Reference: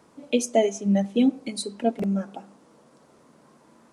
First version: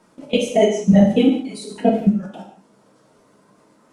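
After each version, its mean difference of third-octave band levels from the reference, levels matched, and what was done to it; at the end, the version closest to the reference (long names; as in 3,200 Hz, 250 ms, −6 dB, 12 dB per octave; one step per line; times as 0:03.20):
4.5 dB: random phases in long frames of 50 ms
output level in coarse steps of 22 dB
reverb whose tail is shaped and stops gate 220 ms falling, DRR −0.5 dB
level +8 dB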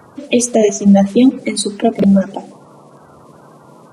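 3.0 dB: spectral magnitudes quantised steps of 30 dB
parametric band 120 Hz +7 dB 0.8 octaves
boost into a limiter +15 dB
level −1 dB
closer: second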